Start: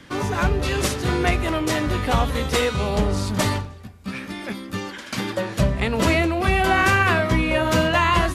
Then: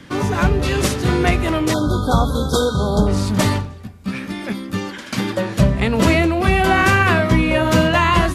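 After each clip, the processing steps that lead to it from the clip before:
time-frequency box erased 0:01.73–0:03.07, 1,600–3,200 Hz
parametric band 180 Hz +4.5 dB 1.9 octaves
level +2.5 dB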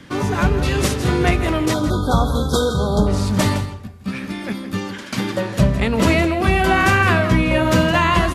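single-tap delay 163 ms −12.5 dB
level −1 dB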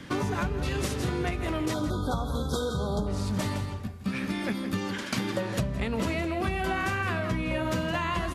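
downward compressor 10 to 1, threshold −24 dBFS, peak gain reduction 15 dB
level −1.5 dB

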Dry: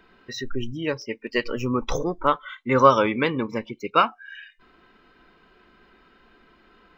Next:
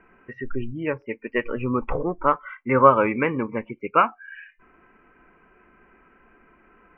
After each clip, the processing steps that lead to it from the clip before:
elliptic low-pass filter 2,500 Hz, stop band 40 dB
level +1 dB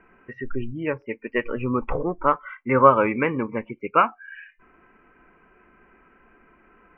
no processing that can be heard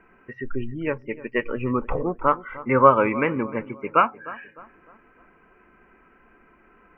feedback echo with a low-pass in the loop 304 ms, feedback 44%, low-pass 1,600 Hz, level −17 dB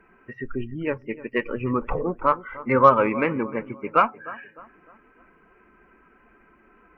spectral magnitudes quantised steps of 15 dB
harmonic generator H 6 −37 dB, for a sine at −1.5 dBFS

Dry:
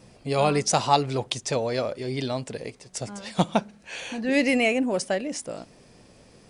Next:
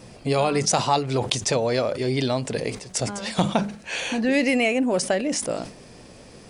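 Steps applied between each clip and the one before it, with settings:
downward compressor 3 to 1, threshold −27 dBFS, peak gain reduction 10.5 dB
mains-hum notches 50/100/150/200 Hz
level that may fall only so fast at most 120 dB per second
level +7.5 dB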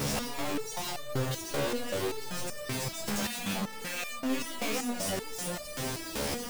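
sign of each sample alone
backwards echo 595 ms −4.5 dB
step-sequenced resonator 5.2 Hz 71–600 Hz

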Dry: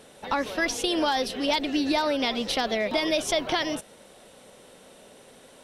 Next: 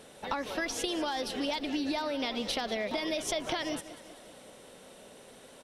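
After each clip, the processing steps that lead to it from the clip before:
downward compressor, threshold −28 dBFS, peak gain reduction 8 dB
repeating echo 192 ms, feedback 57%, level −16 dB
level −1.5 dB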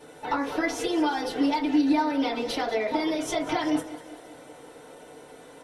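feedback delay network reverb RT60 0.33 s, low-frequency decay 0.7×, high-frequency decay 0.35×, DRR −10 dB
level −5 dB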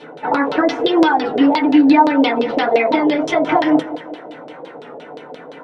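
auto-filter low-pass saw down 5.8 Hz 510–4,100 Hz
low shelf with overshoot 110 Hz −13.5 dB, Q 1.5
wow of a warped record 33 1/3 rpm, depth 100 cents
level +9 dB

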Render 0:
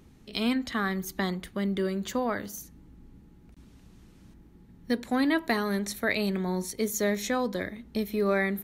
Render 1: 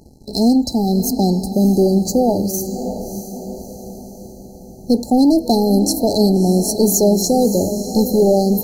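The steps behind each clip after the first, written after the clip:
leveller curve on the samples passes 2
feedback delay with all-pass diffusion 633 ms, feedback 50%, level −10 dB
brick-wall band-stop 900–4,000 Hz
level +8.5 dB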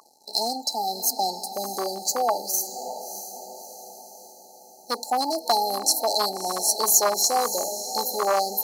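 hard clipping −7 dBFS, distortion −29 dB
high-pass with resonance 1,100 Hz, resonance Q 8.1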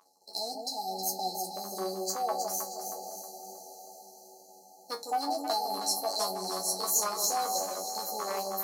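tuned comb filter 94 Hz, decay 0.17 s, harmonics all, mix 100%
tape wow and flutter 18 cents
on a send: delay that swaps between a low-pass and a high-pass 158 ms, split 800 Hz, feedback 59%, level −2 dB
on the sum: level −2.5 dB

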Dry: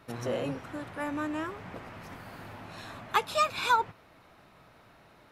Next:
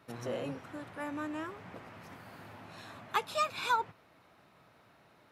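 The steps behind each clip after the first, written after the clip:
high-pass filter 85 Hz
level −5 dB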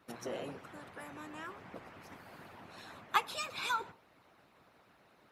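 reverb whose tail is shaped and stops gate 200 ms falling, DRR 11.5 dB
harmonic and percussive parts rebalanced harmonic −16 dB
level +2.5 dB

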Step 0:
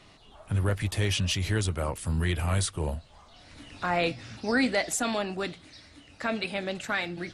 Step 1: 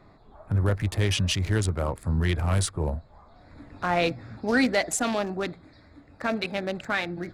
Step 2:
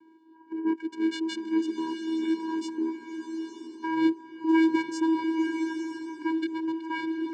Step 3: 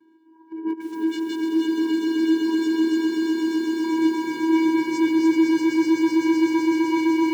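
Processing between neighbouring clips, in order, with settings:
adaptive Wiener filter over 15 samples; level +3 dB
channel vocoder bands 8, square 323 Hz; slow-attack reverb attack 910 ms, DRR 5.5 dB
spectral magnitudes quantised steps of 15 dB; echo that builds up and dies away 127 ms, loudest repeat 8, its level −4.5 dB; feedback echo at a low word length 293 ms, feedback 35%, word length 8 bits, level −4 dB

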